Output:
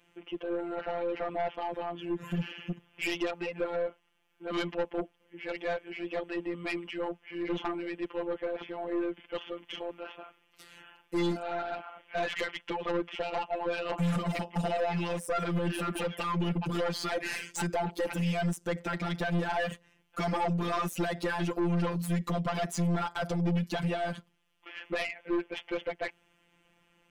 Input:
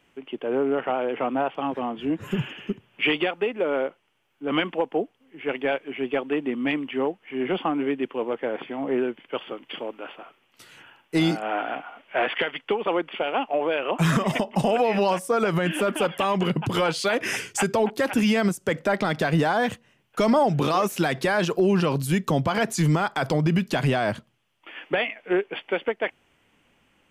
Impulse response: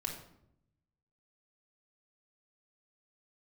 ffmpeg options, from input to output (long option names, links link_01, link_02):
-af "afftfilt=real='hypot(re,im)*cos(PI*b)':imag='0':win_size=1024:overlap=0.75,aeval=exprs='(tanh(17.8*val(0)+0.2)-tanh(0.2))/17.8':channel_layout=same"